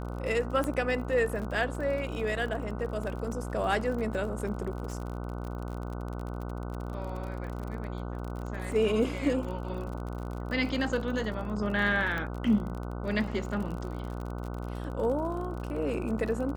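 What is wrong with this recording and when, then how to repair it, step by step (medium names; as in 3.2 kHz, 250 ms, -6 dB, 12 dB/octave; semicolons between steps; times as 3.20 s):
buzz 60 Hz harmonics 25 -36 dBFS
crackle 45 per s -36 dBFS
0.64 s: pop -19 dBFS
12.18 s: pop -21 dBFS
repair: de-click; de-hum 60 Hz, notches 25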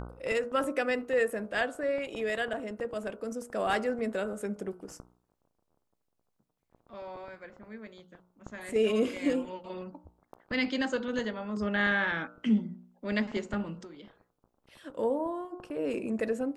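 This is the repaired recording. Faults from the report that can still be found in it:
0.64 s: pop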